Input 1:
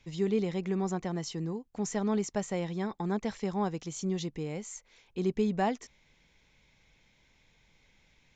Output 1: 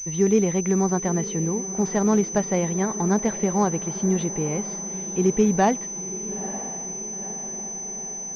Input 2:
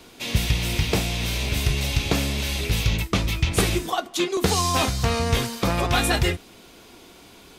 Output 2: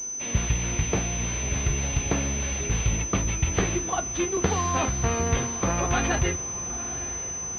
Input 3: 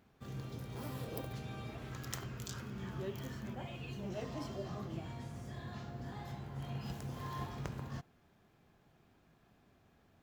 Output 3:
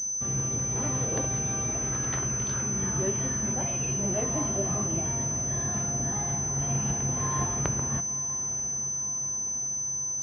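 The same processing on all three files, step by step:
echo that smears into a reverb 937 ms, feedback 60%, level -14 dB; class-D stage that switches slowly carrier 6.1 kHz; peak normalisation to -9 dBFS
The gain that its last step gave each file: +9.5 dB, -3.0 dB, +11.5 dB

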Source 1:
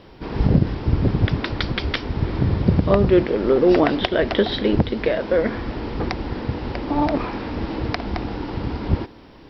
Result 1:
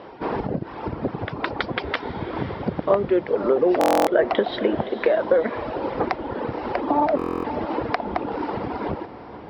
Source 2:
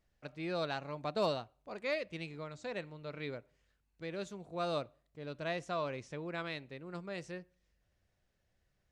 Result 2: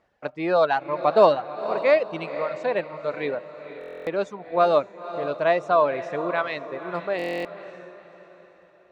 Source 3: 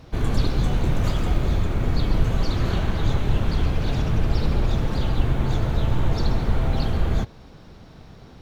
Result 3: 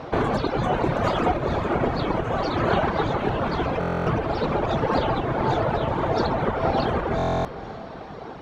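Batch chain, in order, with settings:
reverb removal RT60 1.5 s; compression 4:1, threshold -24 dBFS; band-pass filter 780 Hz, Q 0.89; on a send: echo that smears into a reverb 509 ms, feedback 43%, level -12 dB; on the sum: buffer glitch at 3.79/7.17 s, samples 1024, times 11; normalise loudness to -24 LUFS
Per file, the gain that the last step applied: +10.5 dB, +19.5 dB, +18.5 dB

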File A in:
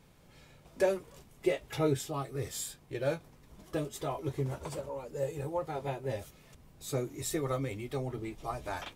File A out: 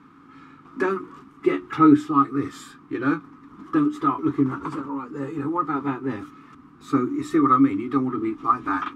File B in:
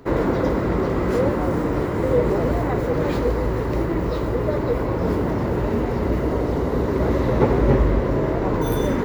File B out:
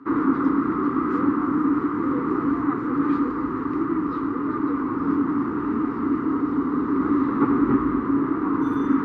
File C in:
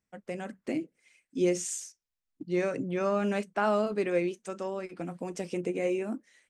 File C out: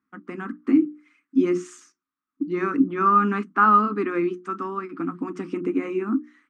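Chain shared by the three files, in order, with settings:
two resonant band-passes 590 Hz, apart 2.1 oct; hum notches 60/120/180/240/300/360 Hz; normalise loudness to -23 LUFS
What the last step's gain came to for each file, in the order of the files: +24.5 dB, +9.5 dB, +20.5 dB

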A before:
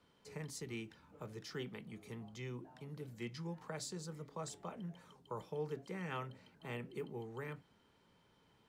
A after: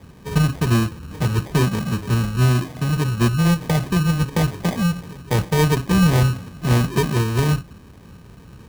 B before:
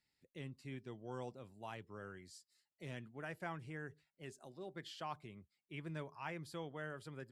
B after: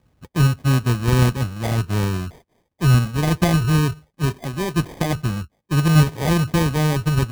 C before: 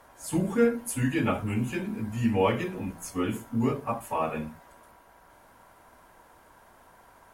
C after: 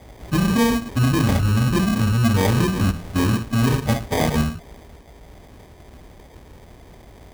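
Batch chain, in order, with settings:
square wave that keeps the level; high-pass 42 Hz; RIAA curve playback; spectral gate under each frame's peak -30 dB strong; in parallel at 0 dB: compressor with a negative ratio -19 dBFS, ratio -0.5; on the sum: sample-and-hold 32×; normalise loudness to -20 LUFS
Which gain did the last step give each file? +9.5 dB, +10.5 dB, -5.5 dB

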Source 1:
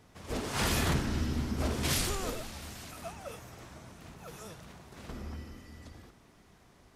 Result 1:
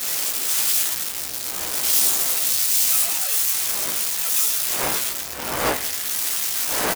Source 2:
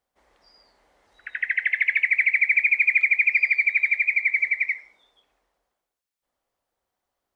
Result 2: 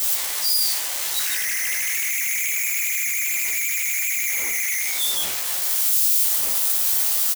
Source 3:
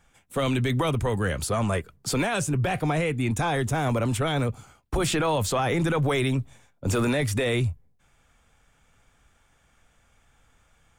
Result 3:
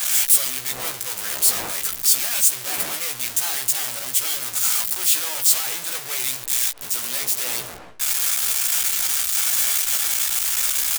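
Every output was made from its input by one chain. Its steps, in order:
one-bit comparator; wind noise 540 Hz -33 dBFS; bass shelf 150 Hz -4 dB; waveshaping leveller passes 1; pre-emphasis filter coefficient 0.97; doubling 16 ms -5 dB; three bands expanded up and down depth 70%; normalise loudness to -19 LUFS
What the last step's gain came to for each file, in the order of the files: +14.0 dB, +2.0 dB, +6.0 dB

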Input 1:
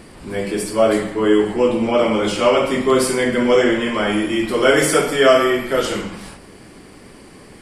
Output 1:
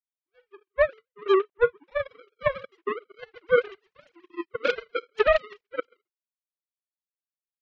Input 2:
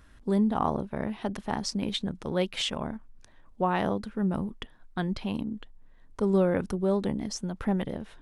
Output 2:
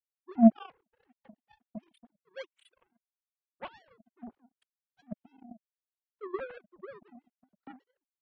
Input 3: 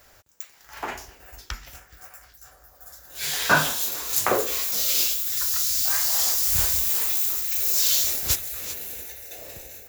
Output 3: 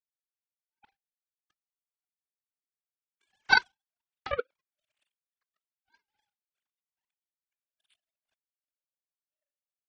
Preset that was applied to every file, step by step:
formants replaced by sine waves; power-law waveshaper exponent 3; peak limiter -11.5 dBFS; normalise loudness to -27 LUFS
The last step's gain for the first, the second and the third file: +3.5 dB, +4.5 dB, +7.0 dB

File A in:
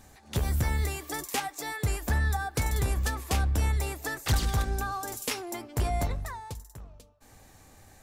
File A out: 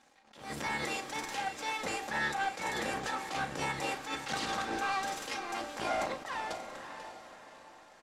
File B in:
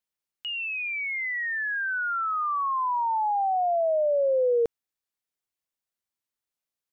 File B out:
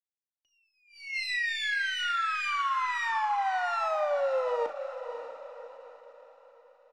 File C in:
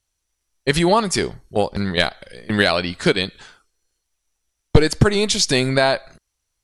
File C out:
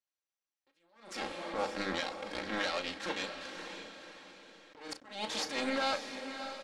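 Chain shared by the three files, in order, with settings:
comb filter that takes the minimum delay 3.7 ms; high-pass 360 Hz 12 dB/octave; hum notches 50/100/150/200/250/300/350/400/450/500 Hz; waveshaping leveller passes 1; compression 8:1, threshold -33 dBFS; peak limiter -27.5 dBFS; power-law waveshaper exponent 1.4; distance through air 85 m; doubling 36 ms -11.5 dB; on a send: echo that smears into a reverb 577 ms, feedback 42%, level -9 dB; on the sum: attacks held to a fixed rise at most 110 dB/s; trim +7 dB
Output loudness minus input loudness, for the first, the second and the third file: -5.0 LU, -3.5 LU, -18.0 LU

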